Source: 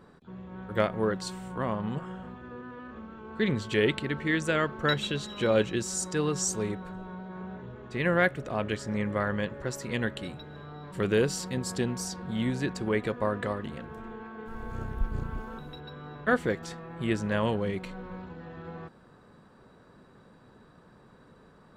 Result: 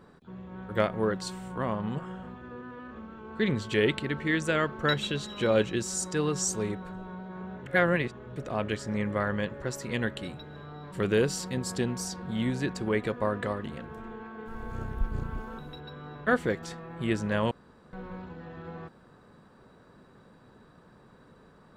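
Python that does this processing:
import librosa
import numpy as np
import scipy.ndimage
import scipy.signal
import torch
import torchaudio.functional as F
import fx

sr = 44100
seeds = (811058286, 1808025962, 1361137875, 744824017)

y = fx.edit(x, sr, fx.reverse_span(start_s=7.66, length_s=0.7),
    fx.room_tone_fill(start_s=17.51, length_s=0.42), tone=tone)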